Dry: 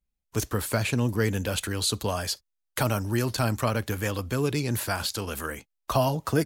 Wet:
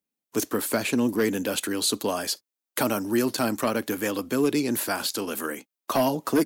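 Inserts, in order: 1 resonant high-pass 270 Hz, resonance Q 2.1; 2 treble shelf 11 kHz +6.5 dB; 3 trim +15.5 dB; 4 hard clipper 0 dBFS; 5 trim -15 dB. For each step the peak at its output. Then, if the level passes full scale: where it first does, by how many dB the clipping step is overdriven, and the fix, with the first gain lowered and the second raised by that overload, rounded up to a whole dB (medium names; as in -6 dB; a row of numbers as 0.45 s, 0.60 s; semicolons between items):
-9.0 dBFS, -9.0 dBFS, +6.5 dBFS, 0.0 dBFS, -15.0 dBFS; step 3, 6.5 dB; step 3 +8.5 dB, step 5 -8 dB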